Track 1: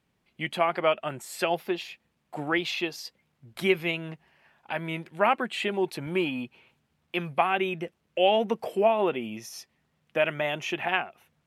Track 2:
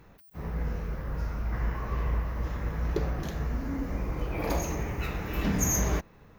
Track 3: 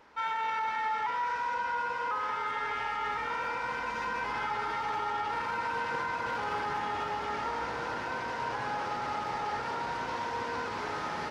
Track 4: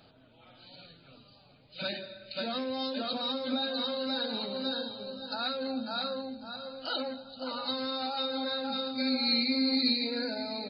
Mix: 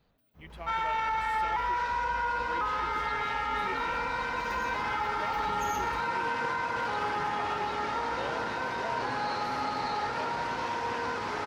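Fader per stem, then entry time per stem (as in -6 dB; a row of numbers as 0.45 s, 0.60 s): -19.0 dB, -17.0 dB, +2.0 dB, -17.0 dB; 0.00 s, 0.00 s, 0.50 s, 0.00 s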